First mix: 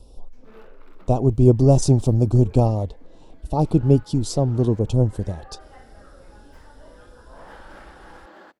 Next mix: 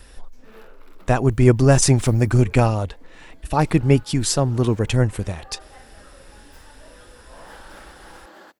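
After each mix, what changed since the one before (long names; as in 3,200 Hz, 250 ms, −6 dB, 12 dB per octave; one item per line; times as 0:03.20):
speech: remove Butterworth band-reject 1,800 Hz, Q 0.56
master: remove low-pass filter 2,400 Hz 6 dB per octave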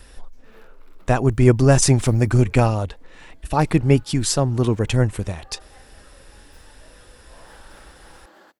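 background −5.0 dB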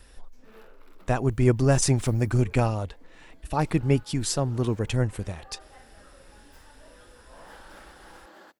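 speech −6.5 dB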